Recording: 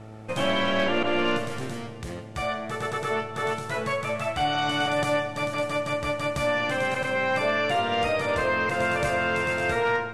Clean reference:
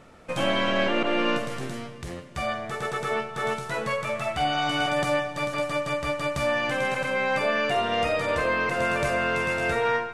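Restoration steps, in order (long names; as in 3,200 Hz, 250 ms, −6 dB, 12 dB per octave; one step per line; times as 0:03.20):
clipped peaks rebuilt −16 dBFS
hum removal 108.8 Hz, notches 8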